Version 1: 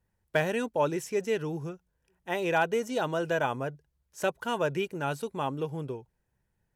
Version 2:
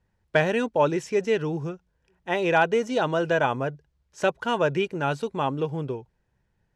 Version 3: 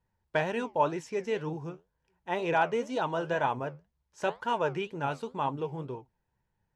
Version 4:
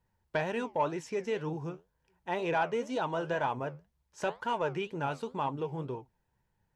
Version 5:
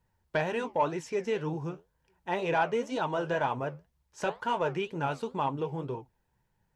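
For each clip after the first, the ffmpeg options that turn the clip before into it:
-af "lowpass=5600,volume=1.88"
-af "equalizer=f=930:t=o:w=0.33:g=8,flanger=delay=5.7:depth=8.4:regen=71:speed=2:shape=triangular,volume=0.668"
-filter_complex "[0:a]asplit=2[s0][s1];[s1]acompressor=threshold=0.0158:ratio=6,volume=1.12[s2];[s0][s2]amix=inputs=2:normalize=0,asoftclip=type=tanh:threshold=0.211,volume=0.596"
-af "flanger=delay=0.6:depth=7.1:regen=-71:speed=1:shape=triangular,volume=2.11"

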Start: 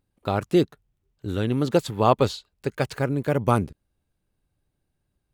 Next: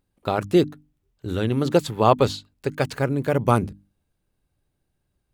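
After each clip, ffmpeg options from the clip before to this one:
-af "bandreject=f=50:t=h:w=6,bandreject=f=100:t=h:w=6,bandreject=f=150:t=h:w=6,bandreject=f=200:t=h:w=6,bandreject=f=250:t=h:w=6,bandreject=f=300:t=h:w=6,volume=1.26"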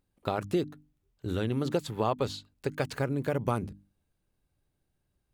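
-af "acompressor=threshold=0.0708:ratio=3,volume=0.668"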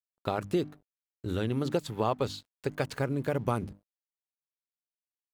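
-af "aeval=exprs='sgn(val(0))*max(abs(val(0))-0.00141,0)':c=same"

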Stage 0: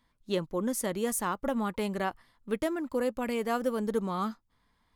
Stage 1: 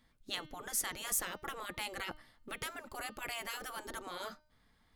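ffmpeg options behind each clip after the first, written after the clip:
-af "bandreject=f=1000:w=5.4,afftfilt=real='re*lt(hypot(re,im),0.0631)':imag='im*lt(hypot(re,im),0.0631)':win_size=1024:overlap=0.75,bandreject=f=304.8:t=h:w=4,bandreject=f=609.6:t=h:w=4,bandreject=f=914.4:t=h:w=4,bandreject=f=1219.2:t=h:w=4,bandreject=f=1524:t=h:w=4,bandreject=f=1828.8:t=h:w=4,bandreject=f=2133.6:t=h:w=4,bandreject=f=2438.4:t=h:w=4,bandreject=f=2743.2:t=h:w=4,bandreject=f=3048:t=h:w=4,bandreject=f=3352.8:t=h:w=4,bandreject=f=3657.6:t=h:w=4,bandreject=f=3962.4:t=h:w=4,bandreject=f=4267.2:t=h:w=4,bandreject=f=4572:t=h:w=4,bandreject=f=4876.8:t=h:w=4,bandreject=f=5181.6:t=h:w=4,bandreject=f=5486.4:t=h:w=4,bandreject=f=5791.2:t=h:w=4,bandreject=f=6096:t=h:w=4,volume=1.26"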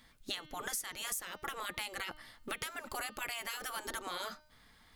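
-af "tiltshelf=f=900:g=-3.5,acompressor=threshold=0.00631:ratio=10,volume=2.51"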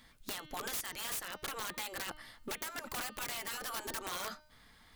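-af "aeval=exprs='(mod(44.7*val(0)+1,2)-1)/44.7':c=same,volume=1.19"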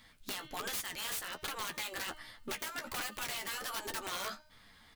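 -filter_complex "[0:a]flanger=delay=9.6:depth=6.1:regen=30:speed=1.3:shape=sinusoidal,acrossover=split=3800[s0][s1];[s0]crystalizer=i=2.5:c=0[s2];[s1]aecho=1:1:86:0.0668[s3];[s2][s3]amix=inputs=2:normalize=0,volume=1.5"

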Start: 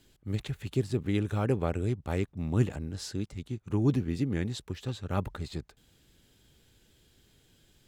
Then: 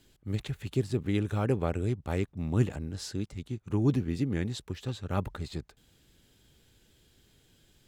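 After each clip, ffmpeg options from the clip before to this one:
-af anull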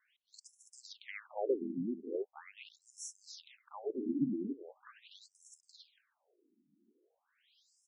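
-filter_complex "[0:a]asplit=2[s0][s1];[s1]aecho=0:1:282:0.376[s2];[s0][s2]amix=inputs=2:normalize=0,afftfilt=real='re*between(b*sr/1024,240*pow(7700/240,0.5+0.5*sin(2*PI*0.41*pts/sr))/1.41,240*pow(7700/240,0.5+0.5*sin(2*PI*0.41*pts/sr))*1.41)':imag='im*between(b*sr/1024,240*pow(7700/240,0.5+0.5*sin(2*PI*0.41*pts/sr))/1.41,240*pow(7700/240,0.5+0.5*sin(2*PI*0.41*pts/sr))*1.41)':win_size=1024:overlap=0.75,volume=0.891"

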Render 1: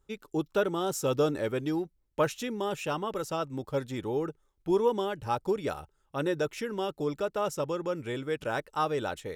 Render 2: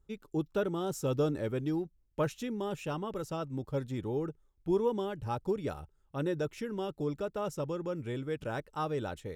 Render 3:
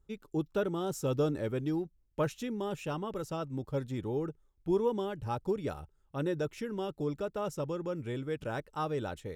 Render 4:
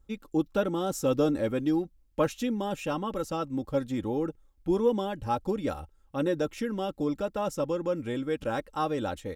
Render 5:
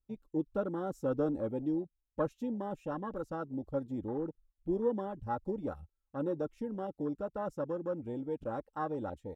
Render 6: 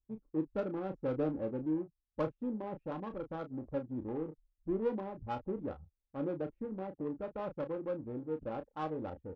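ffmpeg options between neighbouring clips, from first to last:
-af "lowshelf=f=300:g=11,volume=0.422"
-af anull
-af "aecho=1:1:3.7:0.53,volume=1.68"
-af "afwtdn=0.0224,volume=0.473"
-filter_complex "[0:a]adynamicsmooth=sensitivity=3.5:basefreq=680,asplit=2[s0][s1];[s1]adelay=32,volume=0.355[s2];[s0][s2]amix=inputs=2:normalize=0,volume=0.794"

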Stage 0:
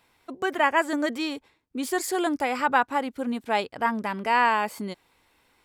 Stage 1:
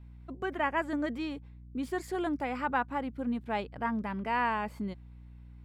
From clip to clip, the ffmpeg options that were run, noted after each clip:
-af "aeval=exprs='val(0)+0.00355*(sin(2*PI*60*n/s)+sin(2*PI*2*60*n/s)/2+sin(2*PI*3*60*n/s)/3+sin(2*PI*4*60*n/s)/4+sin(2*PI*5*60*n/s)/5)':c=same,bass=f=250:g=10,treble=f=4000:g=-11,volume=0.376"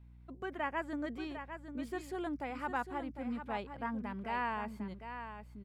-af "aecho=1:1:752:0.355,volume=0.473"

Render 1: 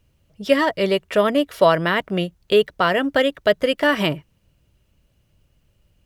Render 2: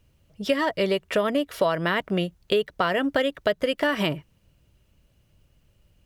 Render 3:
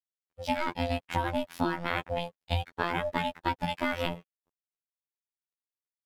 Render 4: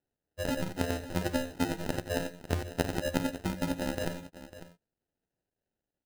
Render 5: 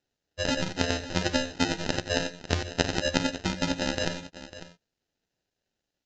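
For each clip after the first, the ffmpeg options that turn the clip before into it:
-af "acompressor=threshold=0.1:ratio=4"
-af "aeval=exprs='val(0)*sin(2*PI*320*n/s)':c=same,aeval=exprs='sgn(val(0))*max(abs(val(0))-0.00251,0)':c=same,afftfilt=real='hypot(re,im)*cos(PI*b)':imag='0':win_size=2048:overlap=0.75"
-af "acompressor=threshold=0.02:ratio=6,acrusher=samples=39:mix=1:aa=0.000001,aecho=1:1:74|85|549:0.126|0.168|0.188,volume=2.11"
-filter_complex "[0:a]acrossover=split=5900[s0][s1];[s0]crystalizer=i=5.5:c=0[s2];[s2][s1]amix=inputs=2:normalize=0,aresample=16000,aresample=44100,volume=1.33"

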